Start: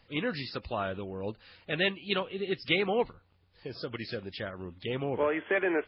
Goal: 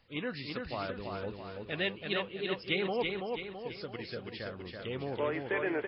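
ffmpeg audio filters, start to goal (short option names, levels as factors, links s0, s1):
-af "aecho=1:1:331|662|993|1324|1655|1986:0.631|0.309|0.151|0.0742|0.0364|0.0178,volume=0.562"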